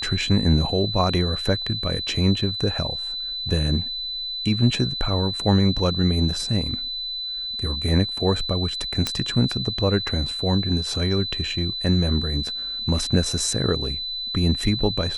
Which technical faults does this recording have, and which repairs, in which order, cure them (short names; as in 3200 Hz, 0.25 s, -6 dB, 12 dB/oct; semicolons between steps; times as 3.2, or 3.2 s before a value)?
tone 4000 Hz -27 dBFS
9.07 pop -7 dBFS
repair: de-click; notch 4000 Hz, Q 30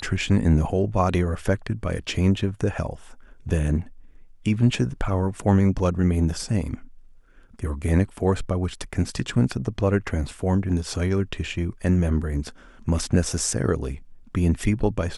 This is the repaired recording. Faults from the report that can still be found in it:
none